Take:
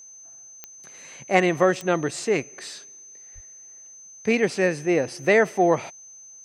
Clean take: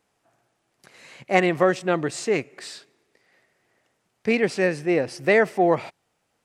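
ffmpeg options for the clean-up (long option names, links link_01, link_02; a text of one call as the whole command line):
ffmpeg -i in.wav -filter_complex "[0:a]adeclick=threshold=4,bandreject=frequency=6200:width=30,asplit=3[link_01][link_02][link_03];[link_01]afade=type=out:start_time=3.34:duration=0.02[link_04];[link_02]highpass=frequency=140:width=0.5412,highpass=frequency=140:width=1.3066,afade=type=in:start_time=3.34:duration=0.02,afade=type=out:start_time=3.46:duration=0.02[link_05];[link_03]afade=type=in:start_time=3.46:duration=0.02[link_06];[link_04][link_05][link_06]amix=inputs=3:normalize=0" out.wav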